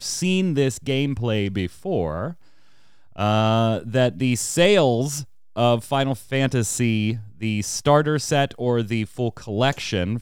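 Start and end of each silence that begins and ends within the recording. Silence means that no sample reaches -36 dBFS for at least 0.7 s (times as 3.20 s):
2.33–3.16 s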